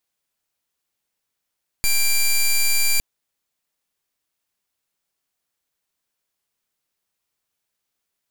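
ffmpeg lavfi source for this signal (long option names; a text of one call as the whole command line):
ffmpeg -f lavfi -i "aevalsrc='0.141*(2*lt(mod(2360*t,1),0.1)-1)':duration=1.16:sample_rate=44100" out.wav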